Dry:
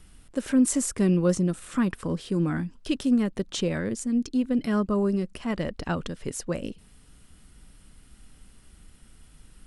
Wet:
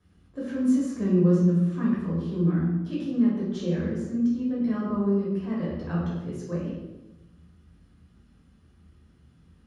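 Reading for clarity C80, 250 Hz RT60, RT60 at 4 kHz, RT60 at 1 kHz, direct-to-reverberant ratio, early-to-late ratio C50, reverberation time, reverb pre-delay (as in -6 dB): 3.5 dB, 1.2 s, 0.80 s, 0.95 s, -6.5 dB, 0.5 dB, 1.0 s, 3 ms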